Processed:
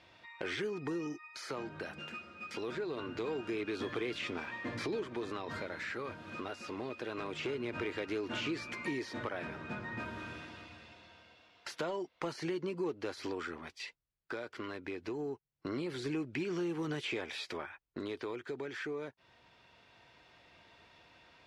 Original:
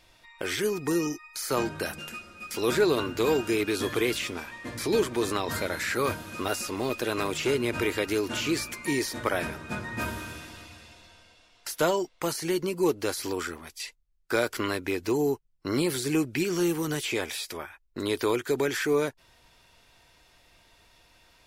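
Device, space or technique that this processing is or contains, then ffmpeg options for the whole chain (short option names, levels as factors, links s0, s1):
AM radio: -af "highpass=100,lowpass=3400,acompressor=threshold=0.0178:ratio=4,asoftclip=type=tanh:threshold=0.0501,tremolo=f=0.24:d=0.38,volume=1.12"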